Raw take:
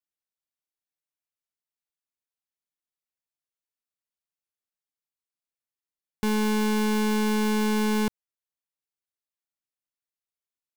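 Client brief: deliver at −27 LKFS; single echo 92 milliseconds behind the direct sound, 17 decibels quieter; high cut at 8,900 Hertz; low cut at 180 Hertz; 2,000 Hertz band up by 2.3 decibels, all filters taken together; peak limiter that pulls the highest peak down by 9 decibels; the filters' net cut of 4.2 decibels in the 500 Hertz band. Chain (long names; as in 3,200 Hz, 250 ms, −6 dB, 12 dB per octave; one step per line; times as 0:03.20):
high-pass filter 180 Hz
low-pass filter 8,900 Hz
parametric band 500 Hz −5 dB
parametric band 2,000 Hz +3.5 dB
brickwall limiter −25 dBFS
single-tap delay 92 ms −17 dB
level +9 dB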